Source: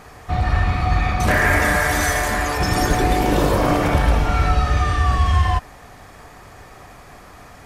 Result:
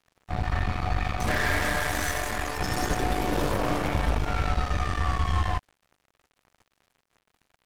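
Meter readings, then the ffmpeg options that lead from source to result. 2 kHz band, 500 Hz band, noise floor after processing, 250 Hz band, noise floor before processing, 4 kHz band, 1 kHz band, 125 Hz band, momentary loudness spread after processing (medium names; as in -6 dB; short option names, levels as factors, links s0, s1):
-9.0 dB, -9.0 dB, -78 dBFS, -9.0 dB, -43 dBFS, -6.5 dB, -9.0 dB, -9.5 dB, 5 LU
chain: -af "aeval=exprs='0.631*(cos(1*acos(clip(val(0)/0.631,-1,1)))-cos(1*PI/2))+0.00562*(cos(7*acos(clip(val(0)/0.631,-1,1)))-cos(7*PI/2))+0.0708*(cos(8*acos(clip(val(0)/0.631,-1,1)))-cos(8*PI/2))':c=same,aeval=exprs='sgn(val(0))*max(abs(val(0))-0.015,0)':c=same,volume=0.355"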